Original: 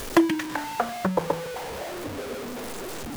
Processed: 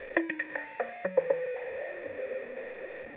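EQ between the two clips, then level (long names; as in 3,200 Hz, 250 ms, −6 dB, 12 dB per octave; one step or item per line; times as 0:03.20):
formant resonators in series e
tilt shelving filter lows −6 dB, about 860 Hz
+6.5 dB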